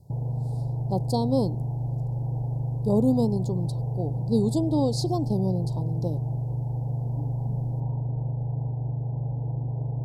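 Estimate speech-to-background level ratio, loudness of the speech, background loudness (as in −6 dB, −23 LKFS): 2.0 dB, −27.5 LKFS, −29.5 LKFS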